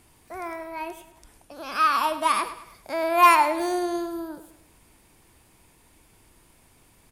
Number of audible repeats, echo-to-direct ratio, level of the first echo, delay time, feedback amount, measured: 3, -12.5 dB, -13.5 dB, 0.104 s, 43%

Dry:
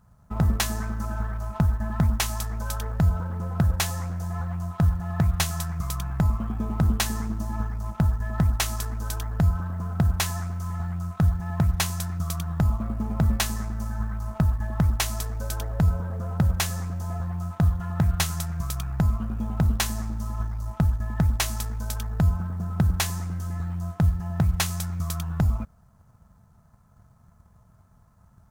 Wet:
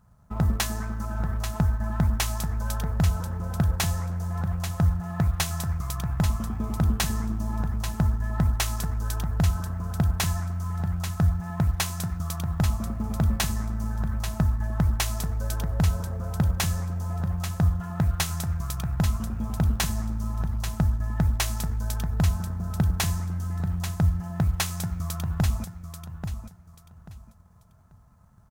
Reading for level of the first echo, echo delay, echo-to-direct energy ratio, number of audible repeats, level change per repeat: -9.0 dB, 0.837 s, -8.5 dB, 3, -12.0 dB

